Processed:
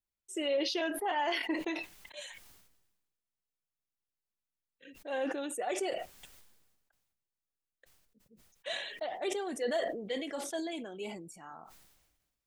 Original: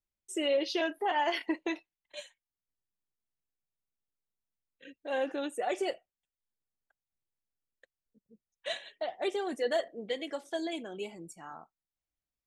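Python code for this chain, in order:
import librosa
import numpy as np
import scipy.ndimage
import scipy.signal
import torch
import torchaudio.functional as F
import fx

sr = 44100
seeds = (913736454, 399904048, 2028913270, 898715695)

y = fx.sustainer(x, sr, db_per_s=47.0)
y = F.gain(torch.from_numpy(y), -3.0).numpy()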